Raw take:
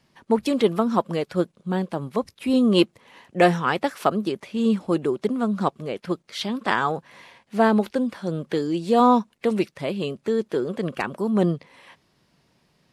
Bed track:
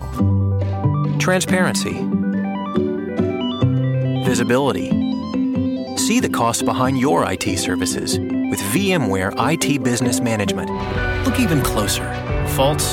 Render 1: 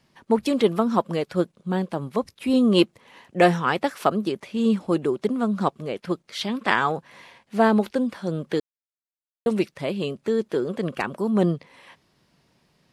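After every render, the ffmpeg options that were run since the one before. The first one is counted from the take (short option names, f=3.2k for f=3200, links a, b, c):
-filter_complex "[0:a]asettb=1/sr,asplit=3[a][b][c];[a]atrim=end=6.474[d];[b]atrim=start=6.47:end=6.93,asetpts=PTS-STARTPTS,afade=t=in:d=0.004:c=qsin,afade=t=out:st=0.456:d=0.004:c=qsin,equalizer=f=2.3k:t=o:w=0.77:g=5.5[e];[c]atrim=start=6.926[f];[d][e]acrossfade=d=0.004:c1=hsin:c2=qsin[g];[g][f]acrossfade=d=0.004:c1=qsin:c2=hsin,asplit=3[h][i][j];[h]atrim=end=8.6,asetpts=PTS-STARTPTS,afade=t=out:st=8.596:d=0.004:c=hsin[k];[i]atrim=start=8.6:end=9.46,asetpts=PTS-STARTPTS,volume=0[l];[j]atrim=start=9.46,asetpts=PTS-STARTPTS,afade=t=in:d=0.004:c=hsin[m];[k][l][m]concat=n=3:v=0:a=1"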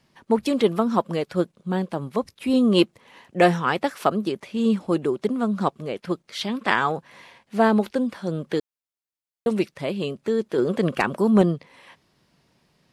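-filter_complex "[0:a]asettb=1/sr,asplit=3[a][b][c];[a]atrim=end=10.584[d];[b]atrim=start=10.58:end=11.42,asetpts=PTS-STARTPTS,afade=t=in:d=0.004:c=qsin,afade=t=out:st=0.836:d=0.004:c=qsin,acontrast=24[e];[c]atrim=start=11.416[f];[d][e]acrossfade=d=0.004:c1=hsin:c2=qsin[g];[g][f]acrossfade=d=0.004:c1=qsin:c2=hsin"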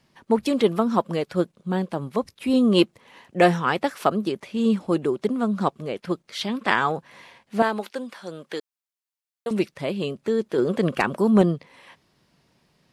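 -filter_complex "[0:a]asettb=1/sr,asplit=3[a][b][c];[a]atrim=end=7.624[d];[b]atrim=start=7.62:end=9.51,asetpts=PTS-STARTPTS,afade=t=in:d=0.004:c=qsin,afade=t=out:st=1.886:d=0.004:c=qsin,highpass=f=860:p=1[e];[c]atrim=start=9.506[f];[d][e]acrossfade=d=0.004:c1=hsin:c2=qsin[g];[g][f]acrossfade=d=0.004:c1=qsin:c2=hsin"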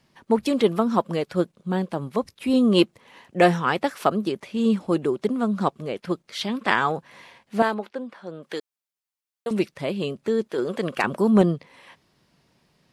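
-filter_complex "[0:a]asettb=1/sr,asplit=3[a][b][c];[a]atrim=end=7.744[d];[b]atrim=start=7.74:end=8.43,asetpts=PTS-STARTPTS,afade=t=in:d=0.004:c=qsin,afade=t=out:st=0.686:d=0.004:c=qsin,lowpass=f=1.3k:p=1[e];[c]atrim=start=8.426[f];[d][e]acrossfade=d=0.004:c1=hsin:c2=qsin[g];[g][f]acrossfade=d=0.004:c1=qsin:c2=hsin,asettb=1/sr,asplit=3[h][i][j];[h]atrim=end=10.474[k];[i]atrim=start=10.47:end=11.04,asetpts=PTS-STARTPTS,afade=t=in:d=0.004:c=qsin,afade=t=out:st=0.566:d=0.004:c=qsin,lowshelf=f=340:g=-9[l];[j]atrim=start=11.036[m];[k][l]acrossfade=d=0.004:c1=hsin:c2=qsin[n];[n][m]acrossfade=d=0.004:c1=qsin:c2=hsin"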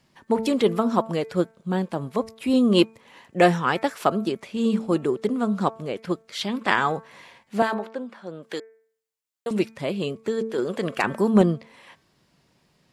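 -af "equalizer=f=7.3k:w=8:g=5,bandreject=f=223.3:t=h:w=4,bandreject=f=446.6:t=h:w=4,bandreject=f=669.9:t=h:w=4,bandreject=f=893.2:t=h:w=4,bandreject=f=1.1165k:t=h:w=4,bandreject=f=1.3398k:t=h:w=4,bandreject=f=1.5631k:t=h:w=4,bandreject=f=1.7864k:t=h:w=4,bandreject=f=2.0097k:t=h:w=4,bandreject=f=2.233k:t=h:w=4,bandreject=f=2.4563k:t=h:w=4"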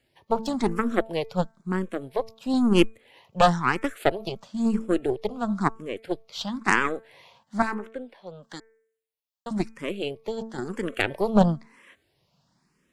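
-filter_complex "[0:a]aeval=exprs='0.794*(cos(1*acos(clip(val(0)/0.794,-1,1)))-cos(1*PI/2))+0.2*(cos(4*acos(clip(val(0)/0.794,-1,1)))-cos(4*PI/2))+0.0251*(cos(7*acos(clip(val(0)/0.794,-1,1)))-cos(7*PI/2))':c=same,asplit=2[a][b];[b]afreqshift=1[c];[a][c]amix=inputs=2:normalize=1"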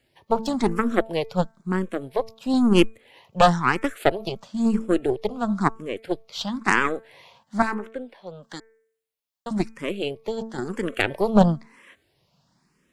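-af "volume=2.5dB,alimiter=limit=-3dB:level=0:latency=1"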